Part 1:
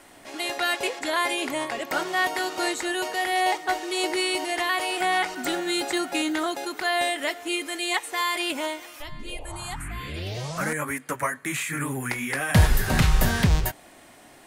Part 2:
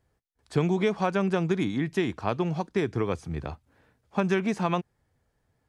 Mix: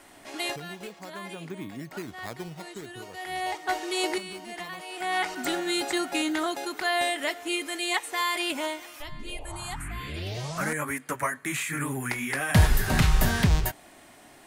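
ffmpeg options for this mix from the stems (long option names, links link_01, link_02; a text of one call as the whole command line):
ffmpeg -i stem1.wav -i stem2.wav -filter_complex "[0:a]bandreject=frequency=510:width=12,volume=-1.5dB[link_01];[1:a]acrusher=samples=9:mix=1:aa=0.000001:lfo=1:lforange=14.4:lforate=0.51,volume=-11dB,afade=type=in:start_time=1.27:duration=0.34:silence=0.446684,afade=type=out:start_time=2.42:duration=0.7:silence=0.316228,asplit=2[link_02][link_03];[link_03]apad=whole_len=638055[link_04];[link_01][link_04]sidechaincompress=threshold=-55dB:ratio=5:attack=16:release=459[link_05];[link_05][link_02]amix=inputs=2:normalize=0" out.wav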